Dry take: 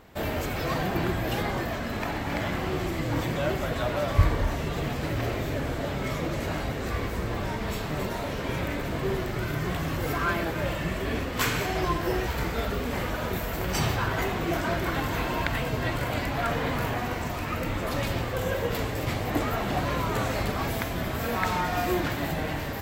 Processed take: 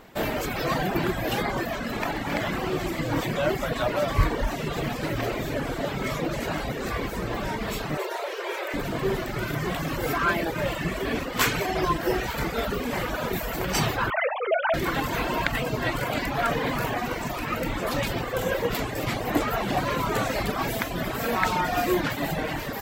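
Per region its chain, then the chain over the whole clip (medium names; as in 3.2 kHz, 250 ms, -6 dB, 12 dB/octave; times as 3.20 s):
7.97–8.74 s: brick-wall FIR high-pass 330 Hz + treble shelf 5.4 kHz -3.5 dB
14.10–14.74 s: formants replaced by sine waves + Chebyshev high-pass 450 Hz, order 4
whole clip: peaking EQ 77 Hz -12.5 dB 0.8 oct; reverb removal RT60 0.79 s; trim +4.5 dB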